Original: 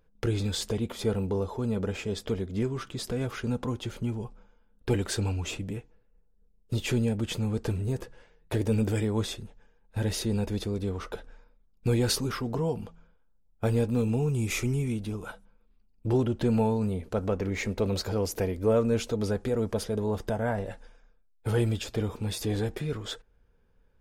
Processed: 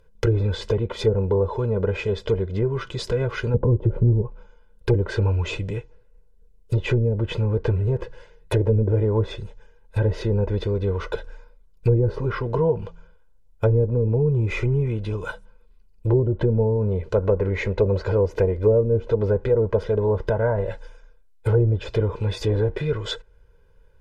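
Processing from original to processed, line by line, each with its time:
3.54–4.22 s: tilt shelf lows +8 dB, about 1.2 kHz
11.91–12.50 s: treble shelf 3.3 kHz -7.5 dB
whole clip: low-pass that closes with the level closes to 430 Hz, closed at -21.5 dBFS; comb 2 ms, depth 73%; trim +6 dB

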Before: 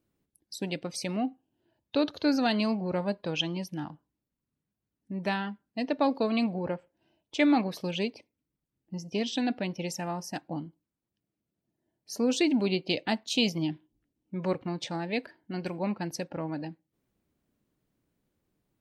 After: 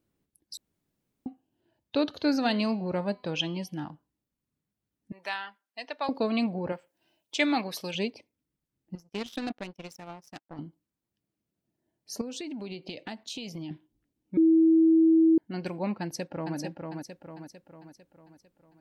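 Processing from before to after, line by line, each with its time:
0.57–1.26 s: room tone
2.05–3.89 s: de-hum 252 Hz, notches 20
5.12–6.09 s: high-pass 890 Hz
6.72–7.95 s: tilt EQ +2.5 dB/octave
8.95–10.59 s: power-law waveshaper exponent 2
12.21–13.71 s: compression 12:1, threshold -34 dBFS
14.37–15.38 s: bleep 324 Hz -16.5 dBFS
16.01–16.57 s: echo throw 450 ms, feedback 50%, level -4 dB

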